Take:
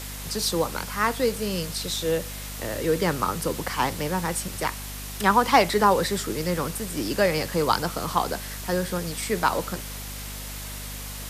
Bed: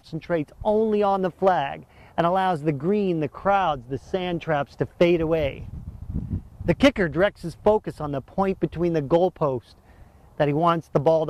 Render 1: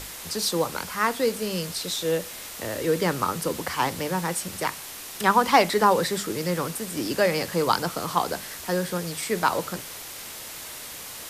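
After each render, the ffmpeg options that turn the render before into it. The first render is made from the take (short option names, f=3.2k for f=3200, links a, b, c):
-af "bandreject=f=50:t=h:w=6,bandreject=f=100:t=h:w=6,bandreject=f=150:t=h:w=6,bandreject=f=200:t=h:w=6,bandreject=f=250:t=h:w=6"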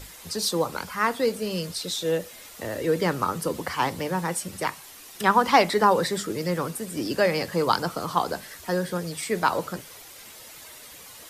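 -af "afftdn=nr=9:nf=-39"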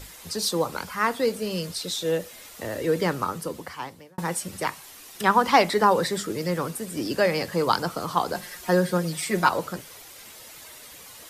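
-filter_complex "[0:a]asettb=1/sr,asplit=3[a][b][c];[a]atrim=end=8.344[d];[b]atrim=start=8.34:end=9.49,asetpts=PTS-STARTPTS,afade=t=in:d=0.004:c=qsin,afade=t=out:st=1.146:d=0.004:c=qsin,aecho=1:1:5.6:0.85,atrim=end_sample=50715[e];[c]atrim=start=9.486[f];[d][e]acrossfade=d=0.004:c1=hsin:c2=qsin[g];[g][f]acrossfade=d=0.004:c1=qsin:c2=hsin,asplit=2[h][i];[h]atrim=end=4.18,asetpts=PTS-STARTPTS,afade=t=out:st=3.03:d=1.15[j];[i]atrim=start=4.18,asetpts=PTS-STARTPTS,afade=t=in:d=0.004:c=hsin[k];[j][k]concat=n=2:v=0:a=1"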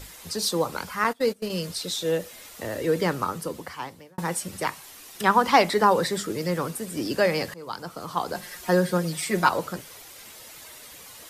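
-filter_complex "[0:a]asettb=1/sr,asplit=3[a][b][c];[a]atrim=end=1.044[d];[b]atrim=start=1.04:end=1.5,asetpts=PTS-STARTPTS,afade=t=in:d=0.004:c=qsin,afade=t=out:st=0.456:d=0.004:c=qsin,agate=range=-22dB:threshold=-29dB:ratio=16:release=100:detection=peak[e];[c]atrim=start=1.496[f];[d][e]acrossfade=d=0.004:c1=hsin:c2=qsin[g];[g][f]acrossfade=d=0.004:c1=qsin:c2=hsin,asplit=2[h][i];[h]atrim=end=7.54,asetpts=PTS-STARTPTS,afade=t=out:st=7.536:d=0.004:c=hsin:silence=0.0841395[j];[i]atrim=start=7.54,asetpts=PTS-STARTPTS,afade=t=in:d=1.02:silence=0.0841395[k];[j][k]concat=n=2:v=0:a=1"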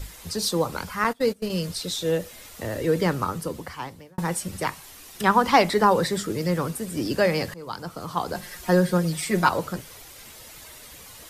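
-af "lowshelf=f=120:g=12"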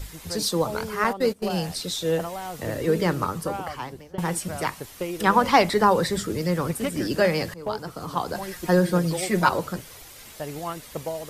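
-filter_complex "[1:a]volume=-12.5dB[a];[0:a][a]amix=inputs=2:normalize=0"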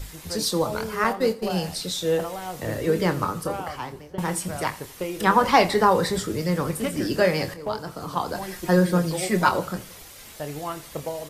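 -filter_complex "[0:a]asplit=2[a][b];[b]adelay=27,volume=-10dB[c];[a][c]amix=inputs=2:normalize=0,aecho=1:1:84|168|252|336:0.106|0.0498|0.0234|0.011"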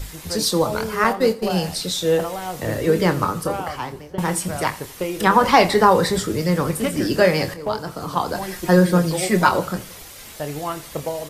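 -af "volume=4.5dB,alimiter=limit=-2dB:level=0:latency=1"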